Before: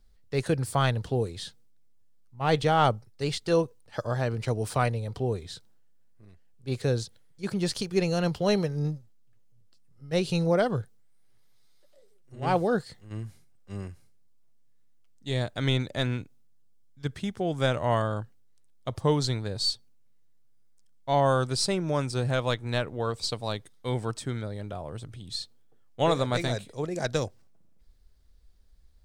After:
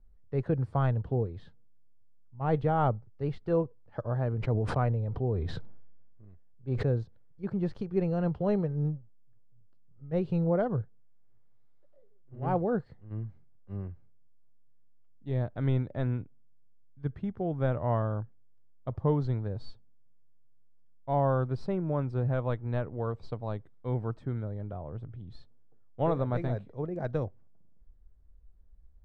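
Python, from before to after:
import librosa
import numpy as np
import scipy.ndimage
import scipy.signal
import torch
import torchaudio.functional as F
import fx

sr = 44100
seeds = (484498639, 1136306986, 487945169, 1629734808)

y = scipy.signal.sosfilt(scipy.signal.butter(2, 1200.0, 'lowpass', fs=sr, output='sos'), x)
y = fx.low_shelf(y, sr, hz=160.0, db=7.0)
y = fx.sustainer(y, sr, db_per_s=27.0, at=(4.35, 6.87))
y = y * 10.0 ** (-4.5 / 20.0)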